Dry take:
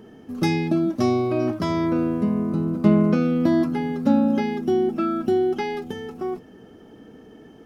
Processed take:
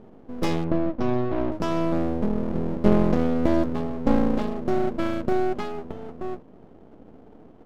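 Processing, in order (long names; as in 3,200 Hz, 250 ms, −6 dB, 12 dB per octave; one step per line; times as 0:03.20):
adaptive Wiener filter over 25 samples
half-wave rectification
0:00.64–0:01.52: high-frequency loss of the air 200 metres
level +2 dB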